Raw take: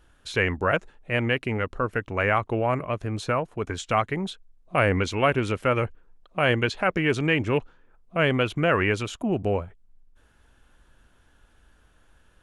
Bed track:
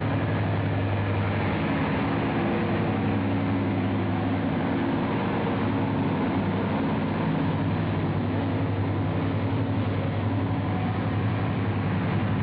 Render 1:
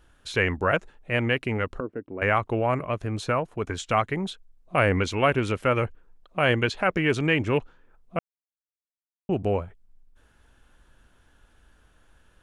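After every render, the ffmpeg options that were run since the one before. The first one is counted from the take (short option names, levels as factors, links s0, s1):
-filter_complex "[0:a]asettb=1/sr,asplit=3[s0][s1][s2];[s0]atrim=end=1.804[s3];[s1]atrim=start=1.8:end=2.22,asetpts=PTS-STARTPTS,afade=t=in:d=0.004:c=qsin,afade=t=out:st=0.416:d=0.004:c=qsin,bandpass=f=310:t=q:w=1.8[s4];[s2]atrim=start=2.216[s5];[s3][s4]acrossfade=d=0.004:c1=hsin:c2=qsin[s6];[s6][s5]acrossfade=d=0.004:c1=qsin:c2=hsin,asplit=3[s7][s8][s9];[s7]atrim=end=8.19,asetpts=PTS-STARTPTS,afade=t=out:st=8.186:d=0.004:c=hsin[s10];[s8]atrim=start=8.19:end=9.29,asetpts=PTS-STARTPTS,volume=0[s11];[s9]atrim=start=9.29,asetpts=PTS-STARTPTS,afade=t=in:d=0.004:c=hsin[s12];[s10][s11][s12]concat=n=3:v=0:a=1"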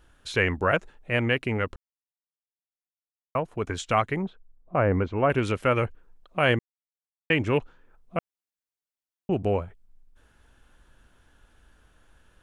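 -filter_complex "[0:a]asettb=1/sr,asplit=3[s0][s1][s2];[s0]atrim=end=4.224[s3];[s1]atrim=start=4.22:end=5.3,asetpts=PTS-STARTPTS,afade=t=in:d=0.004:c=qsin,afade=t=out:st=1.076:d=0.004:c=qsin,lowpass=1200[s4];[s2]atrim=start=5.296[s5];[s3][s4]acrossfade=d=0.004:c1=hsin:c2=qsin[s6];[s6][s5]acrossfade=d=0.004:c1=qsin:c2=hsin,asplit=5[s7][s8][s9][s10][s11];[s7]atrim=end=1.76,asetpts=PTS-STARTPTS,afade=t=out:st=1.756:d=0.004:c=hsin[s12];[s8]atrim=start=1.76:end=3.35,asetpts=PTS-STARTPTS,volume=0[s13];[s9]atrim=start=3.35:end=6.59,asetpts=PTS-STARTPTS,afade=t=in:d=0.004:c=hsin,afade=t=out:st=3.236:d=0.004:c=hsin[s14];[s10]atrim=start=6.59:end=7.3,asetpts=PTS-STARTPTS,volume=0[s15];[s11]atrim=start=7.3,asetpts=PTS-STARTPTS,afade=t=in:d=0.004:c=hsin[s16];[s12][s13][s14][s15][s16]concat=n=5:v=0:a=1"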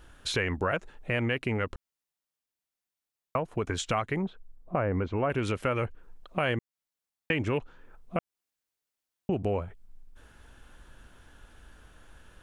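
-filter_complex "[0:a]asplit=2[s0][s1];[s1]alimiter=limit=0.106:level=0:latency=1:release=35,volume=0.891[s2];[s0][s2]amix=inputs=2:normalize=0,acompressor=threshold=0.0355:ratio=2.5"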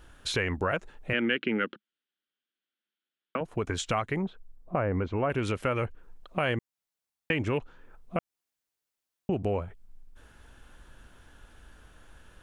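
-filter_complex "[0:a]asettb=1/sr,asplit=3[s0][s1][s2];[s0]atrim=end=1.134[s3];[s1]atrim=start=1.13:end=3.41,asetpts=PTS-STARTPTS,afade=t=in:d=0.004:c=qsin,afade=t=out:st=2.276:d=0.004:c=qsin,highpass=f=190:w=0.5412,highpass=f=190:w=1.3066,equalizer=f=210:t=q:w=4:g=6,equalizer=f=330:t=q:w=4:g=5,equalizer=f=690:t=q:w=4:g=-9,equalizer=f=1000:t=q:w=4:g=-9,equalizer=f=1500:t=q:w=4:g=8,equalizer=f=3200:t=q:w=4:g=9,lowpass=f=4000:w=0.5412,lowpass=f=4000:w=1.3066[s4];[s2]atrim=start=3.406[s5];[s3][s4]acrossfade=d=0.004:c1=hsin:c2=qsin[s6];[s6][s5]acrossfade=d=0.004:c1=qsin:c2=hsin"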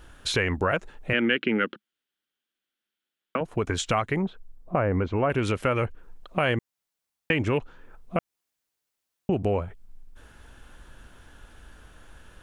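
-af "volume=1.58"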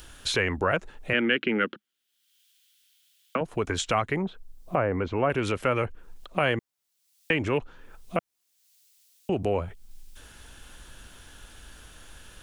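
-filter_complex "[0:a]acrossover=split=270|2800[s0][s1][s2];[s0]alimiter=level_in=1.5:limit=0.0631:level=0:latency=1,volume=0.668[s3];[s2]acompressor=mode=upward:threshold=0.00631:ratio=2.5[s4];[s3][s1][s4]amix=inputs=3:normalize=0"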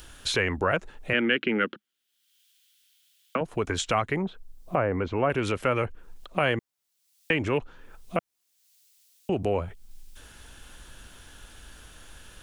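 -af anull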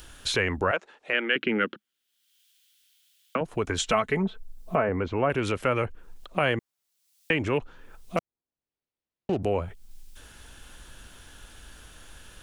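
-filter_complex "[0:a]asettb=1/sr,asplit=3[s0][s1][s2];[s0]atrim=end=0.714[s3];[s1]atrim=start=0.71:end=1.36,asetpts=PTS-STARTPTS,afade=t=in:d=0.004:c=qsin,afade=t=out:st=0.646:d=0.004:c=qsin,highpass=430,lowpass=6200[s4];[s2]atrim=start=1.356[s5];[s3][s4]acrossfade=d=0.004:c1=hsin:c2=qsin[s6];[s6][s5]acrossfade=d=0.004:c1=qsin:c2=hsin,asettb=1/sr,asplit=3[s7][s8][s9];[s7]atrim=end=3.784[s10];[s8]atrim=start=3.78:end=4.89,asetpts=PTS-STARTPTS,afade=t=in:d=0.004:c=qsin,afade=t=out:st=1.106:d=0.004:c=qsin,aecho=1:1:4.6:0.65,atrim=end_sample=48951[s11];[s9]atrim=start=4.886[s12];[s10][s11]acrossfade=d=0.004:c1=hsin:c2=qsin[s13];[s13][s12]acrossfade=d=0.004:c1=qsin:c2=hsin,asettb=1/sr,asplit=3[s14][s15][s16];[s14]atrim=end=8.174[s17];[s15]atrim=start=8.17:end=9.43,asetpts=PTS-STARTPTS,afade=t=in:d=0.004:c=qsin,afade=t=out:st=1.256:d=0.004:c=qsin,adynamicsmooth=sensitivity=6:basefreq=680[s18];[s16]atrim=start=9.426[s19];[s17][s18]acrossfade=d=0.004:c1=hsin:c2=qsin[s20];[s20][s19]acrossfade=d=0.004:c1=qsin:c2=hsin"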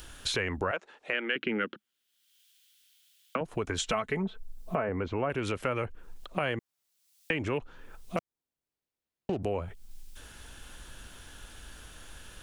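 -af "acompressor=threshold=0.0282:ratio=2"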